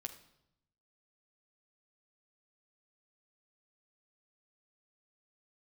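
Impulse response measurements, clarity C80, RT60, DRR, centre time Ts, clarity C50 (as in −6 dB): 14.5 dB, 0.80 s, 4.0 dB, 11 ms, 11.5 dB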